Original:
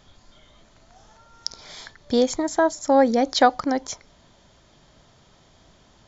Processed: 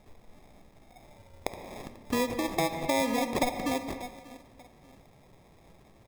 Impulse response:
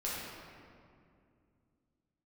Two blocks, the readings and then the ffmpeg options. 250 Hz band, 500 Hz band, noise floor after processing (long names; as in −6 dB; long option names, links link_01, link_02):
−8.0 dB, −10.5 dB, −58 dBFS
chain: -filter_complex "[0:a]asplit=2[link_01][link_02];[link_02]adelay=588,lowpass=frequency=1200:poles=1,volume=-23dB,asplit=2[link_03][link_04];[link_04]adelay=588,lowpass=frequency=1200:poles=1,volume=0.33[link_05];[link_01][link_03][link_05]amix=inputs=3:normalize=0,acrusher=samples=30:mix=1:aa=0.000001,asplit=2[link_06][link_07];[1:a]atrim=start_sample=2205,afade=type=out:start_time=0.34:duration=0.01,atrim=end_sample=15435,asetrate=48510,aresample=44100[link_08];[link_07][link_08]afir=irnorm=-1:irlink=0,volume=-10dB[link_09];[link_06][link_09]amix=inputs=2:normalize=0,acompressor=threshold=-24dB:ratio=2.5,volume=-4dB"